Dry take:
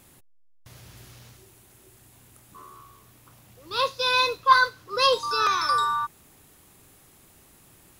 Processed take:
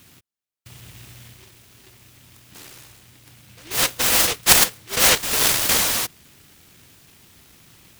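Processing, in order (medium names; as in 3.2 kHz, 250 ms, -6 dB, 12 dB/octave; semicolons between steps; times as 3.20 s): high-pass 55 Hz; peaking EQ 970 Hz -3.5 dB 0.59 oct; delay time shaken by noise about 2.6 kHz, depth 0.48 ms; trim +5.5 dB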